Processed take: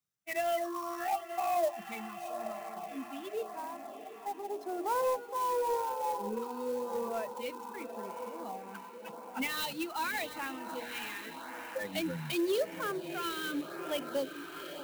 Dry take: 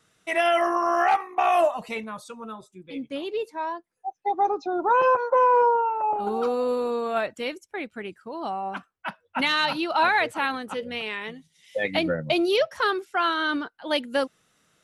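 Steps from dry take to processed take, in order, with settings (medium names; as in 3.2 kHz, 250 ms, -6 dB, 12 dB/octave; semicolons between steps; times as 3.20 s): expander on every frequency bin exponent 1.5; high-pass 110 Hz 24 dB/octave; hum notches 60/120/180/240/300/360/420/480 Hz; on a send: echo that smears into a reverb 794 ms, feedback 64%, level -11 dB; on the sum: dynamic bell 1.3 kHz, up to -7 dB, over -37 dBFS, Q 1; LFO notch sine 0.88 Hz 530–4600 Hz; in parallel at -7 dB: overload inside the chain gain 28.5 dB; on the sum: sampling jitter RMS 0.028 ms; trim -7 dB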